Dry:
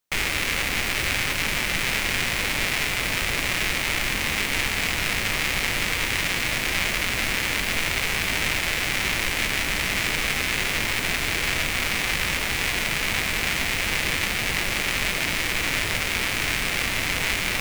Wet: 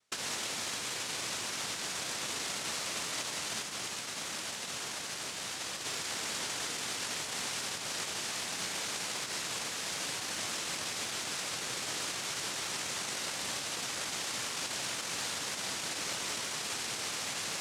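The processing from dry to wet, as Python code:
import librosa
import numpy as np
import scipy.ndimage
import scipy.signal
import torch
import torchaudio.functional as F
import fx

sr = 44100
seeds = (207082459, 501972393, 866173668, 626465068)

y = 10.0 ** (-24.0 / 20.0) * np.tanh(x / 10.0 ** (-24.0 / 20.0))
y = fx.over_compress(y, sr, threshold_db=-36.0, ratio=-1.0)
y = fx.highpass(y, sr, hz=1200.0, slope=12, at=(3.6, 5.85))
y = fx.noise_vocoder(y, sr, seeds[0], bands=1)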